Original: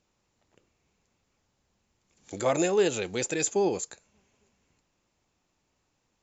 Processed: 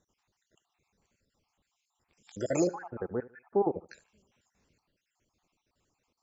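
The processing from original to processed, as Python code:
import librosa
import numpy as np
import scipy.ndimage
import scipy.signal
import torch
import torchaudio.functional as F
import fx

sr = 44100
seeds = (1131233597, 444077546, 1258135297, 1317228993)

y = fx.spec_dropout(x, sr, seeds[0], share_pct=57)
y = fx.steep_lowpass(y, sr, hz=1500.0, slope=48, at=(2.67, 3.89))
y = fx.echo_feedback(y, sr, ms=75, feedback_pct=30, wet_db=-19)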